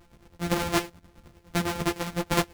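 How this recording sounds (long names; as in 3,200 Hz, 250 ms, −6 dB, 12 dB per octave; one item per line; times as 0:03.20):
a buzz of ramps at a fixed pitch in blocks of 256 samples
chopped level 9.7 Hz, depth 60%, duty 55%
a shimmering, thickened sound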